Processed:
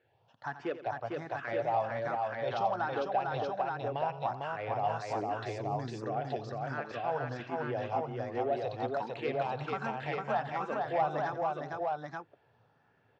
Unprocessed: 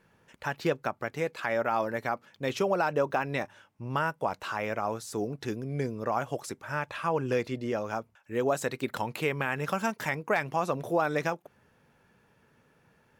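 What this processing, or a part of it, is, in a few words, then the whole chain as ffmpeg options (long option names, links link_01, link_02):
barber-pole phaser into a guitar amplifier: -filter_complex "[0:a]asplit=2[link_01][link_02];[link_02]afreqshift=1.3[link_03];[link_01][link_03]amix=inputs=2:normalize=1,asoftclip=type=tanh:threshold=-21.5dB,highpass=89,equalizer=frequency=110:width_type=q:width=4:gain=8,equalizer=frequency=190:width_type=q:width=4:gain=-9,equalizer=frequency=740:width_type=q:width=4:gain=10,equalizer=frequency=2300:width_type=q:width=4:gain=-4,lowpass=frequency=4600:width=0.5412,lowpass=frequency=4600:width=1.3066,asettb=1/sr,asplit=3[link_04][link_05][link_06];[link_04]atrim=end=4.874[link_07];[link_05]atrim=start=4.87:end=6.03,asetpts=PTS-STARTPTS,afade=type=in:duration=0.004:curve=qsin,afade=type=out:start_time=1.156:duration=0.004:curve=qsin,aemphasis=mode=production:type=50kf[link_08];[link_06]atrim=start=6.026[link_09];[link_07][link_08]acrossfade=duration=0.004:curve1=hsin:curve2=qsin[link_10];[link_10][link_09]acrossfade=duration=0.004:curve1=qsin:curve2=hsin,aecho=1:1:86|168|453|638|861|877:0.211|0.141|0.708|0.112|0.133|0.708,volume=-5dB"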